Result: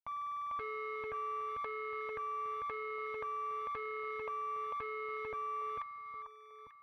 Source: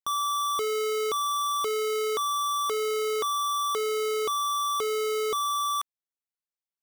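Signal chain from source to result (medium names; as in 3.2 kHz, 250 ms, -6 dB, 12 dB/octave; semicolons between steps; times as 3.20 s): median filter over 41 samples; FFT filter 120 Hz 0 dB, 180 Hz -6 dB, 300 Hz 0 dB, 480 Hz -2 dB, 770 Hz -3 dB, 1.8 kHz +4 dB, 3.2 kHz -24 dB, 4.7 kHz -3 dB, 7.3 kHz -30 dB; peak limiter -38.5 dBFS, peak gain reduction 14 dB; tone controls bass -2 dB, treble -11 dB; static phaser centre 1.4 kHz, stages 6; Chebyshev shaper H 2 -25 dB, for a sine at -41.5 dBFS; comb of notches 380 Hz; echo whose repeats swap between lows and highs 446 ms, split 1.3 kHz, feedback 51%, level -4 dB; transformer saturation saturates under 800 Hz; trim +14 dB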